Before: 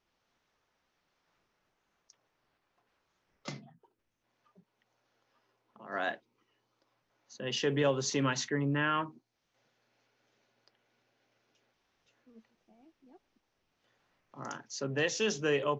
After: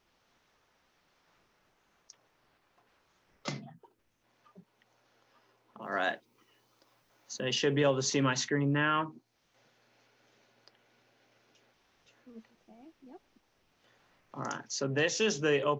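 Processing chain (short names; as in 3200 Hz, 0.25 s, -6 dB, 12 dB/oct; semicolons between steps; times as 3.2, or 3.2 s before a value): 5.82–7.54 high shelf 6700 Hz +10.5 dB; in parallel at +2 dB: compressor, threshold -43 dBFS, peak gain reduction 18 dB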